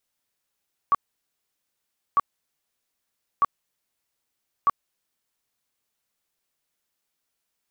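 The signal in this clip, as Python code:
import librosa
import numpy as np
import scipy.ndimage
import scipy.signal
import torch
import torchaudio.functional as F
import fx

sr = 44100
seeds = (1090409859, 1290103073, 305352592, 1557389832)

y = fx.tone_burst(sr, hz=1140.0, cycles=31, every_s=1.25, bursts=4, level_db=-14.5)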